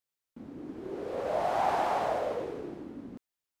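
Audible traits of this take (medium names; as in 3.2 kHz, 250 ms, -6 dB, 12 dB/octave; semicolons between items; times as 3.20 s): noise floor -89 dBFS; spectral tilt -3.5 dB/octave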